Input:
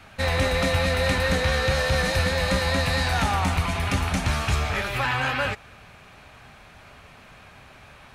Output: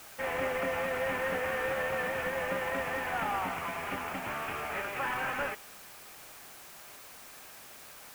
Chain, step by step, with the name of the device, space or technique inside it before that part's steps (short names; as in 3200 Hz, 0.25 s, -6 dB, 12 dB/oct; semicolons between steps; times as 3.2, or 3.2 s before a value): army field radio (BPF 330–2800 Hz; CVSD 16 kbps; white noise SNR 16 dB); gain -5.5 dB